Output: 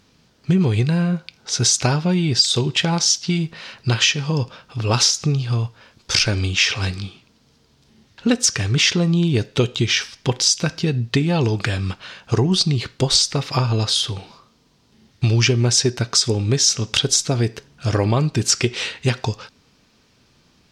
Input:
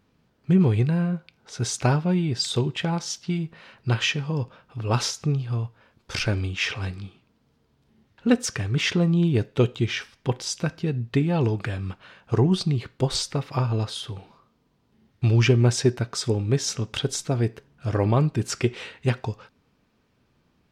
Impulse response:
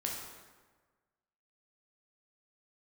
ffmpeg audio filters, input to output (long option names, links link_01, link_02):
-af "equalizer=frequency=5500:width_type=o:width=1.8:gain=12.5,acompressor=threshold=-22dB:ratio=3,volume=7dB"